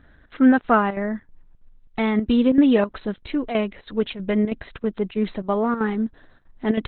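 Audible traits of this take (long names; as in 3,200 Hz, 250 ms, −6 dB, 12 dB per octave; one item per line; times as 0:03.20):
chopped level 3.1 Hz, depth 65%, duty 80%
Opus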